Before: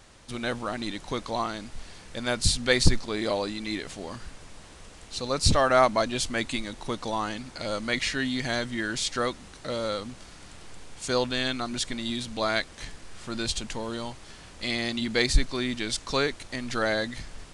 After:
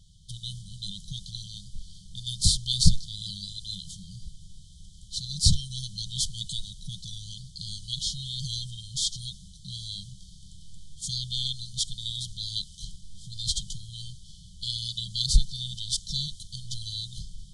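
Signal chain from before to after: FFT band-reject 200–3000 Hz; tape noise reduction on one side only decoder only; trim +2 dB

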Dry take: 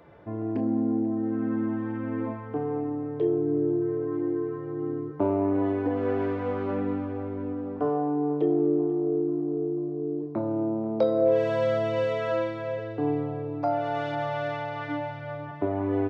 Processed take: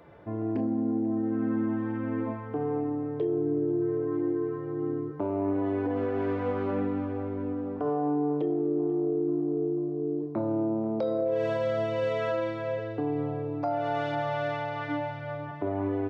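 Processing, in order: peak limiter -20.5 dBFS, peak gain reduction 8.5 dB

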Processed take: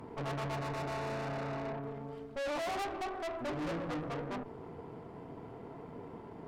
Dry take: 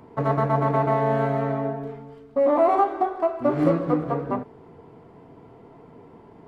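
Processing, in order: valve stage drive 33 dB, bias 0.8; 0.55–1.75 s: band-stop 3.2 kHz, Q 7.9; peak limiter -39 dBFS, peak gain reduction 9.5 dB; trim +5 dB

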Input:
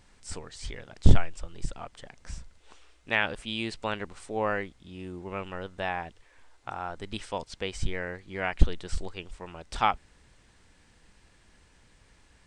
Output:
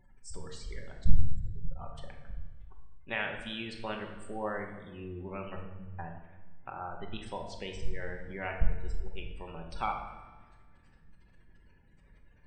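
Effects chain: 5.56–5.99 s: inverse Chebyshev low-pass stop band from 500 Hz, stop band 50 dB; spectral gate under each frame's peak -20 dB strong; in parallel at +2 dB: compression, threshold -37 dBFS, peak gain reduction 26 dB; on the sum: feedback comb 51 Hz, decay 1.9 s, harmonics all, mix 50%; simulated room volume 560 m³, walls mixed, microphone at 1.1 m; trim -5.5 dB

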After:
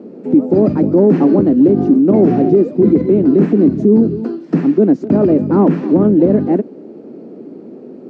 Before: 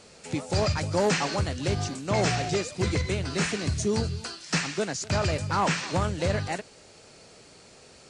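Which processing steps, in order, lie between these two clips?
Butterworth band-pass 270 Hz, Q 1.8; tilt EQ +3 dB/octave; loudness maximiser +36 dB; trim -1.5 dB

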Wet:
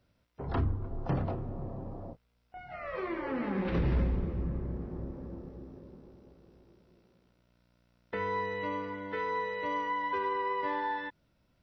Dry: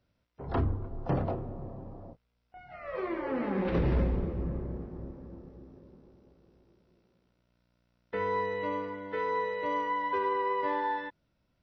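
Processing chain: dynamic bell 540 Hz, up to -5 dB, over -44 dBFS, Q 0.76; in parallel at -0.5 dB: compression, threshold -39 dBFS, peak gain reduction 14 dB; on the sum: trim -2 dB

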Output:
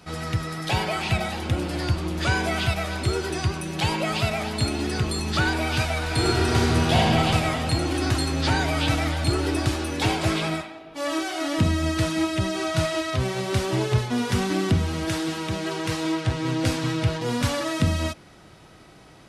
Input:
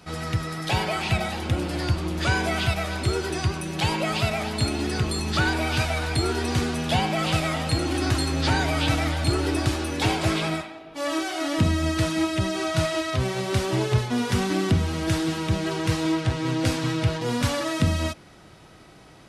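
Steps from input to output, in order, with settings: 6.03–7.06 s: reverb throw, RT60 2.7 s, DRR -3 dB; 15.05–16.27 s: bass shelf 150 Hz -10 dB

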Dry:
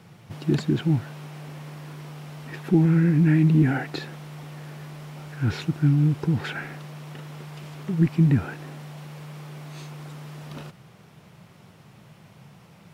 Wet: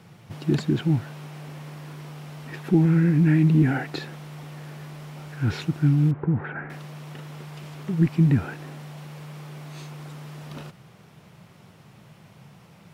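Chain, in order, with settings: 6.11–6.70 s: low-pass 1.8 kHz 24 dB/octave

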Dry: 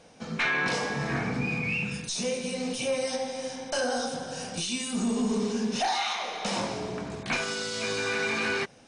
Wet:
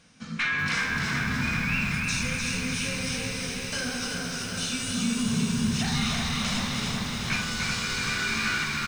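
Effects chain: high-order bell 550 Hz -13 dB; on a send: frequency-shifting echo 300 ms, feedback 53%, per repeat -71 Hz, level -4 dB; on the sum: bit-crushed delay 380 ms, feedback 80%, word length 8-bit, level -5.5 dB

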